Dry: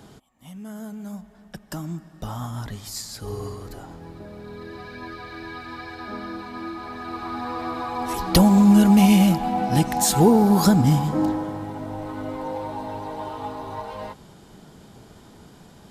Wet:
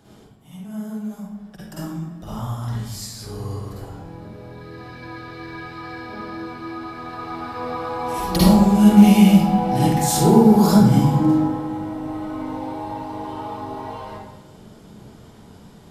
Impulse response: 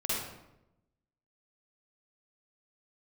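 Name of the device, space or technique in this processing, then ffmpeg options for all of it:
bathroom: -filter_complex "[1:a]atrim=start_sample=2205[s0];[0:a][s0]afir=irnorm=-1:irlink=0,volume=0.531"

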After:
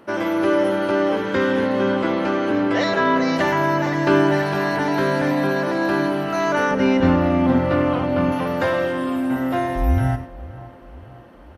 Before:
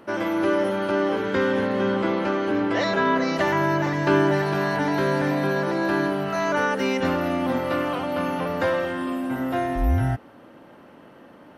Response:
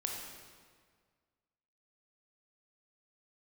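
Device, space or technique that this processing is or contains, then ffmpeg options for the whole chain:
keyed gated reverb: -filter_complex "[0:a]asettb=1/sr,asplit=3[s0][s1][s2];[s0]atrim=end=6.714[s3];[s1]atrim=start=6.71:end=8.32,asetpts=PTS-STARTPTS,afade=t=in:d=0.004:c=qsin,afade=t=out:st=1.606:d=0.004:c=qsin,aemphasis=mode=reproduction:type=bsi[s4];[s2]atrim=start=8.316[s5];[s3][s4]acrossfade=d=0.004:c1=hsin:c2=qsin[s6];[s6][s5]acrossfade=d=0.004:c1=qsin:c2=hsin,asplit=3[s7][s8][s9];[1:a]atrim=start_sample=2205[s10];[s8][s10]afir=irnorm=-1:irlink=0[s11];[s9]apad=whole_len=510471[s12];[s11][s12]sidechaingate=range=0.0224:threshold=0.0178:ratio=16:detection=peak,volume=0.398[s13];[s7][s13]amix=inputs=2:normalize=0,asplit=2[s14][s15];[s15]adelay=528,lowpass=f=2000:p=1,volume=0.133,asplit=2[s16][s17];[s17]adelay=528,lowpass=f=2000:p=1,volume=0.54,asplit=2[s18][s19];[s19]adelay=528,lowpass=f=2000:p=1,volume=0.54,asplit=2[s20][s21];[s21]adelay=528,lowpass=f=2000:p=1,volume=0.54,asplit=2[s22][s23];[s23]adelay=528,lowpass=f=2000:p=1,volume=0.54[s24];[s14][s16][s18][s20][s22][s24]amix=inputs=6:normalize=0"

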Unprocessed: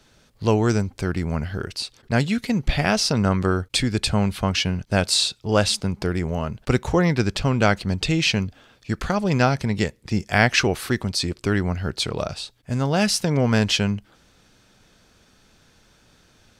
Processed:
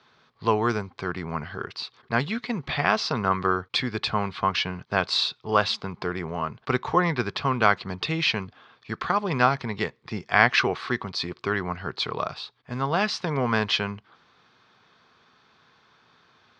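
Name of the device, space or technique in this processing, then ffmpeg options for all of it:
kitchen radio: -af "highpass=190,equalizer=f=200:t=q:w=4:g=-7,equalizer=f=300:t=q:w=4:g=-9,equalizer=f=560:t=q:w=4:g=-8,equalizer=f=1100:t=q:w=4:g=9,equalizer=f=2800:t=q:w=4:g=-4,lowpass=f=4200:w=0.5412,lowpass=f=4200:w=1.3066"

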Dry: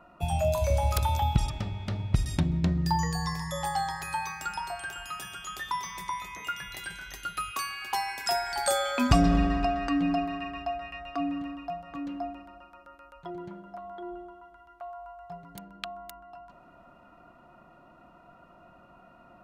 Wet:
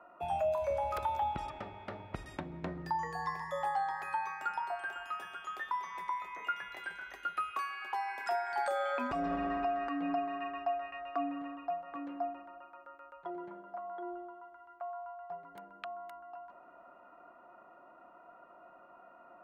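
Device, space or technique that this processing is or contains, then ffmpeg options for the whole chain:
DJ mixer with the lows and highs turned down: -filter_complex "[0:a]acrossover=split=320 2200:gain=0.0794 1 0.1[s0][s1][s2];[s0][s1][s2]amix=inputs=3:normalize=0,alimiter=level_in=1.06:limit=0.0631:level=0:latency=1:release=286,volume=0.944"

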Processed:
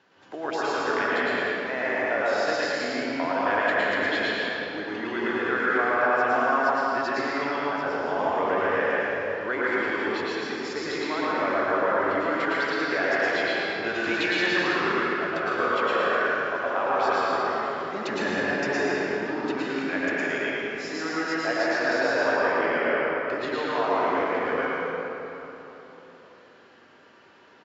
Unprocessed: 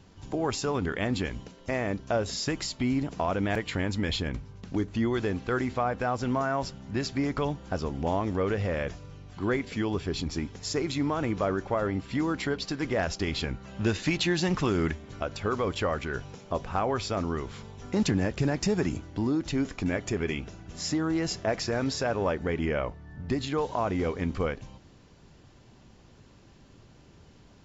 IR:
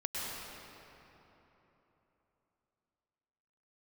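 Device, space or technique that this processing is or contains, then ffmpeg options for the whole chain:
station announcement: -filter_complex "[0:a]highpass=420,lowpass=4000,equalizer=f=1600:t=o:w=0.53:g=8,aecho=1:1:113.7|154.5:0.708|0.282[s0];[1:a]atrim=start_sample=2205[s1];[s0][s1]afir=irnorm=-1:irlink=0"

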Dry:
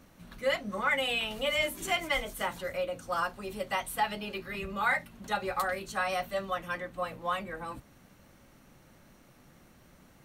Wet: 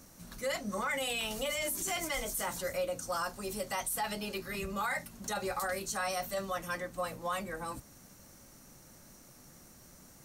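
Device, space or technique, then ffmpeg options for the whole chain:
over-bright horn tweeter: -af "highshelf=f=4300:t=q:w=1.5:g=9.5,alimiter=level_in=1.19:limit=0.0631:level=0:latency=1:release=24,volume=0.841"

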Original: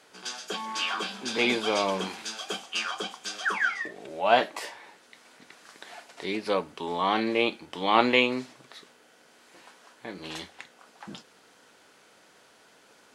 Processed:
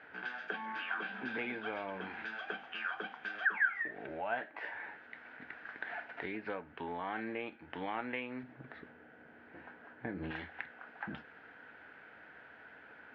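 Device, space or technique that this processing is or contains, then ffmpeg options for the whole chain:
bass amplifier: -filter_complex "[0:a]acompressor=threshold=0.0112:ratio=4,highpass=61,equalizer=f=72:t=q:w=4:g=10,equalizer=f=190:t=q:w=4:g=-5,equalizer=f=380:t=q:w=4:g=-6,equalizer=f=550:t=q:w=4:g=-5,equalizer=f=1100:t=q:w=4:g=-8,equalizer=f=1600:t=q:w=4:g=9,lowpass=f=2300:w=0.5412,lowpass=f=2300:w=1.3066,asettb=1/sr,asplit=3[s0][s1][s2];[s0]atrim=end=8.434[s3];[s1]atrim=start=8.43:end=10.31,asetpts=PTS-STARTPTS,afade=t=in:d=0.004:c=qsin,afade=t=out:st=1.876:d=0.004:c=qsin,tiltshelf=f=630:g=7[s4];[s2]atrim=start=10.306[s5];[s3][s4]acrossfade=d=0.004:c1=hsin:c2=qsin[s6];[s6][s5]acrossfade=d=0.004:c1=qsin:c2=hsin,volume=1.41"

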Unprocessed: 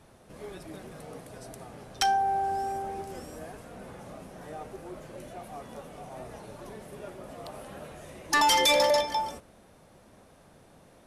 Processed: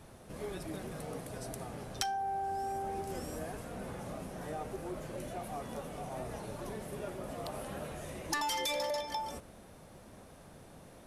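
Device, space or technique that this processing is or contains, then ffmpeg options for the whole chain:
ASMR close-microphone chain: -af "lowshelf=f=210:g=3.5,acompressor=threshold=0.0178:ratio=6,highshelf=f=10000:g=5,volume=1.12"

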